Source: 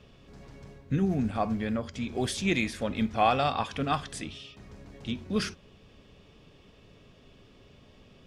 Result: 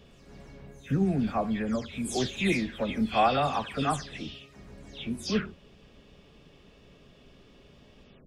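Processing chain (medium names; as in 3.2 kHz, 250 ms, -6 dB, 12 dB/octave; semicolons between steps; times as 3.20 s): delay that grows with frequency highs early, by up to 229 ms; trim +1 dB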